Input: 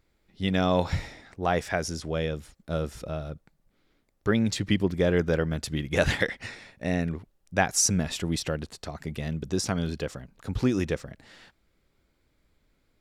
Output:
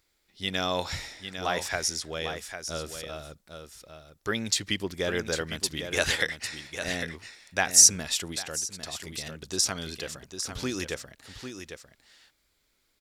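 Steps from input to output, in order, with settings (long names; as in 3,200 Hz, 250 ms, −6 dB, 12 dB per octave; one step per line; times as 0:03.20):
guitar amp tone stack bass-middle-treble 5-5-5
single-tap delay 801 ms −8.5 dB
0:08.31–0:09.50: downward compressor 12 to 1, threshold −42 dBFS, peak gain reduction 9.5 dB
drawn EQ curve 170 Hz 0 dB, 380 Hz +11 dB, 2,400 Hz +6 dB, 5,200 Hz +10 dB
level +4 dB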